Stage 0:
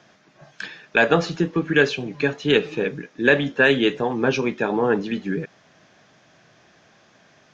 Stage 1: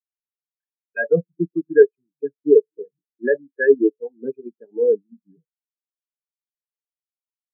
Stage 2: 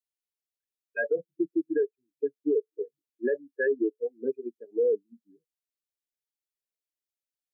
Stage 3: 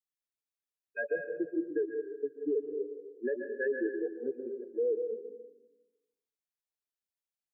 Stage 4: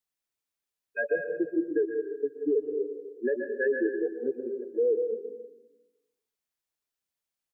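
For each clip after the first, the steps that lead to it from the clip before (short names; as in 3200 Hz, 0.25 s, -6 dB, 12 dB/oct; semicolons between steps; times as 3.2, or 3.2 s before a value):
high shelf 3600 Hz -7.5 dB; in parallel at 0 dB: level quantiser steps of 22 dB; on the sum: spectral expander 4:1; gain -2 dB
compressor 2.5:1, threshold -18 dBFS, peak gain reduction 9 dB; fixed phaser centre 410 Hz, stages 4; limiter -18.5 dBFS, peak gain reduction 8.5 dB
plate-style reverb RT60 1.1 s, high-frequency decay 0.55×, pre-delay 0.115 s, DRR 4.5 dB; gain -6 dB
echo 0.125 s -16.5 dB; gain +5 dB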